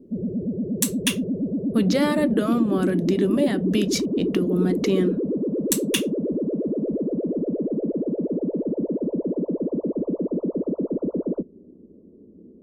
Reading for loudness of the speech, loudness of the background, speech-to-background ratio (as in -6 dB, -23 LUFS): -24.5 LUFS, -26.0 LUFS, 1.5 dB